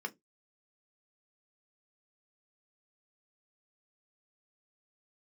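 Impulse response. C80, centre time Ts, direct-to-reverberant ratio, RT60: 35.5 dB, 5 ms, 5.0 dB, 0.20 s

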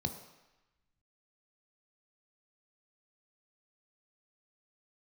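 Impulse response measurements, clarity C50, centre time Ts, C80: 9.5 dB, 19 ms, 11.5 dB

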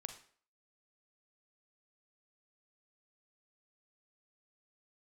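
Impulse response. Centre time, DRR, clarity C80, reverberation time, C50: 12 ms, 7.0 dB, 13.5 dB, 0.50 s, 9.5 dB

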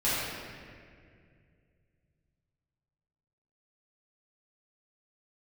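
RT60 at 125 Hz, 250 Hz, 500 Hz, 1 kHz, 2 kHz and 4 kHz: 3.8, 2.8, 2.5, 1.8, 2.1, 1.4 seconds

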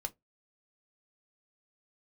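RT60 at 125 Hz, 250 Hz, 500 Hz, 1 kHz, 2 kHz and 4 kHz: 0.25, 0.20, 0.20, 0.15, 0.15, 0.10 seconds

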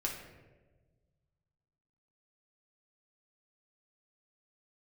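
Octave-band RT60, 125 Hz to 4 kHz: 2.4, 1.7, 1.6, 1.1, 1.0, 0.70 seconds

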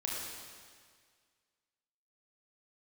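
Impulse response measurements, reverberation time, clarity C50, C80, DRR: 1.8 s, −1.0 dB, 1.0 dB, −4.0 dB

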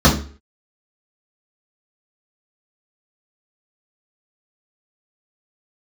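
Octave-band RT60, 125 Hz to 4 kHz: 0.40, 0.40, 0.45, 0.40, 0.40, 0.35 seconds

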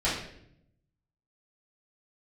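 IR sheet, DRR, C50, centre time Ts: −10.5 dB, 3.0 dB, 47 ms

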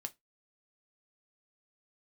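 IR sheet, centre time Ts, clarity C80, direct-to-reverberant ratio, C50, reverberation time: 3 ms, 36.0 dB, 6.5 dB, 24.5 dB, 0.15 s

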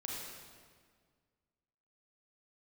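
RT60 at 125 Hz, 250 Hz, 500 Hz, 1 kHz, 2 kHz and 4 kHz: 2.2, 2.1, 1.9, 1.7, 1.6, 1.4 seconds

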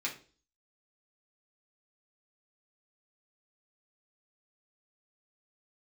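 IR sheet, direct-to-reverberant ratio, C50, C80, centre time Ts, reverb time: −4.0 dB, 10.5 dB, 16.5 dB, 16 ms, 0.40 s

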